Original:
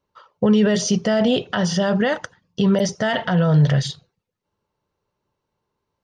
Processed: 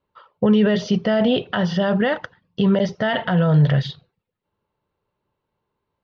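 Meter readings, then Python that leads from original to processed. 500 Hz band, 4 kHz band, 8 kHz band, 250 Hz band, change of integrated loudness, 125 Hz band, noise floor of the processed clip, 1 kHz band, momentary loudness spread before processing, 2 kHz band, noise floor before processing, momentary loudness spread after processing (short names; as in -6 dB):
0.0 dB, -2.0 dB, under -15 dB, 0.0 dB, 0.0 dB, 0.0 dB, -80 dBFS, 0.0 dB, 8 LU, 0.0 dB, -80 dBFS, 7 LU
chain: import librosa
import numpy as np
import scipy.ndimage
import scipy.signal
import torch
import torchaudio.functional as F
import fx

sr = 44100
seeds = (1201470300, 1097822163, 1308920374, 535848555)

y = scipy.signal.sosfilt(scipy.signal.butter(4, 3900.0, 'lowpass', fs=sr, output='sos'), x)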